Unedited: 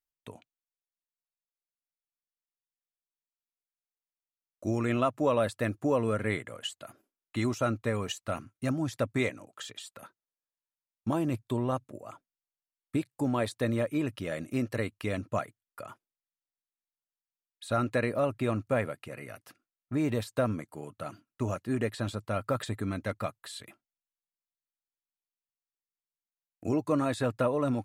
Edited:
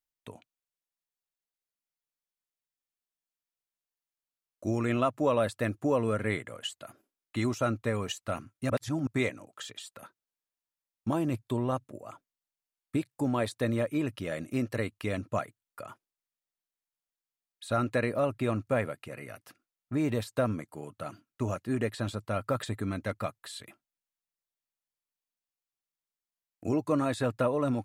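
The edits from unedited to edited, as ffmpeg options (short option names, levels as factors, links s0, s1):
-filter_complex "[0:a]asplit=3[s0][s1][s2];[s0]atrim=end=8.702[s3];[s1]atrim=start=8.698:end=9.072,asetpts=PTS-STARTPTS,areverse[s4];[s2]atrim=start=9.068[s5];[s3][s4]acrossfade=d=0.004:c1=hsin:c2=hsin[s6];[s6][s5]acrossfade=d=0.004:c1=hsin:c2=hsin"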